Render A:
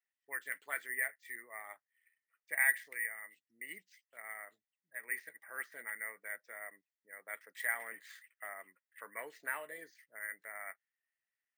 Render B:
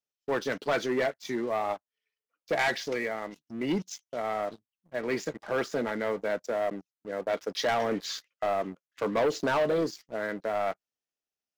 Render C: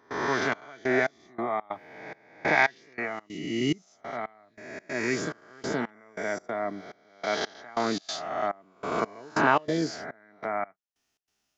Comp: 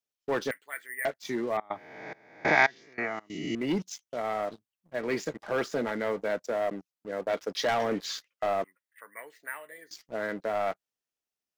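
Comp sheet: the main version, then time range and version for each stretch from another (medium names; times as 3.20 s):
B
0.51–1.05 s: from A
1.57–3.55 s: from C
8.64–9.91 s: from A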